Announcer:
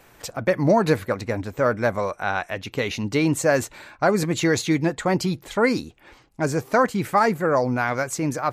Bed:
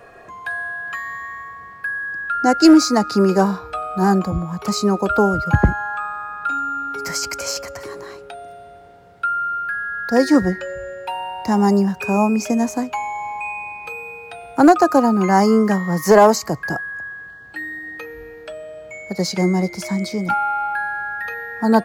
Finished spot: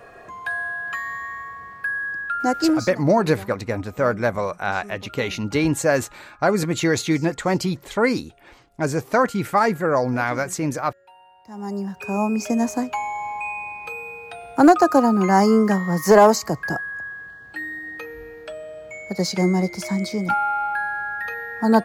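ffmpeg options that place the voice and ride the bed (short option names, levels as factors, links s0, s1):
-filter_complex "[0:a]adelay=2400,volume=1.06[s0];[1:a]volume=11.9,afade=t=out:st=2.07:d=0.91:silence=0.0707946,afade=t=in:st=11.49:d=1.2:silence=0.0794328[s1];[s0][s1]amix=inputs=2:normalize=0"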